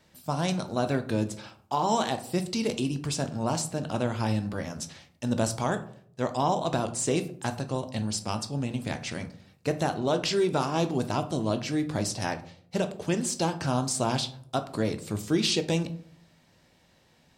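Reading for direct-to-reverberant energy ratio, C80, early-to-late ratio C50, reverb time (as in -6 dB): 8.0 dB, 18.0 dB, 14.0 dB, 0.60 s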